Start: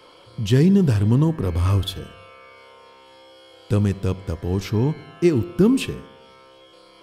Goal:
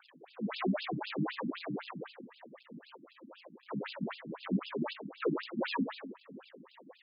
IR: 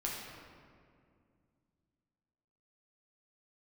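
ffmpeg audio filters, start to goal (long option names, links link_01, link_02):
-filter_complex "[0:a]lowshelf=frequency=260:gain=6.5,alimiter=limit=-6.5dB:level=0:latency=1:release=236,asoftclip=type=tanh:threshold=-22.5dB,asplit=2[link_01][link_02];[link_02]asetrate=58866,aresample=44100,atempo=0.749154,volume=-7dB[link_03];[link_01][link_03]amix=inputs=2:normalize=0,acrusher=samples=42:mix=1:aa=0.000001:lfo=1:lforange=42:lforate=2.3,aphaser=in_gain=1:out_gain=1:delay=4.7:decay=0.46:speed=1.1:type=triangular,asplit=2[link_04][link_05];[1:a]atrim=start_sample=2205[link_06];[link_05][link_06]afir=irnorm=-1:irlink=0,volume=-17.5dB[link_07];[link_04][link_07]amix=inputs=2:normalize=0,afftfilt=real='re*between(b*sr/1024,210*pow(3700/210,0.5+0.5*sin(2*PI*3.9*pts/sr))/1.41,210*pow(3700/210,0.5+0.5*sin(2*PI*3.9*pts/sr))*1.41)':imag='im*between(b*sr/1024,210*pow(3700/210,0.5+0.5*sin(2*PI*3.9*pts/sr))/1.41,210*pow(3700/210,0.5+0.5*sin(2*PI*3.9*pts/sr))*1.41)':win_size=1024:overlap=0.75,volume=-1.5dB"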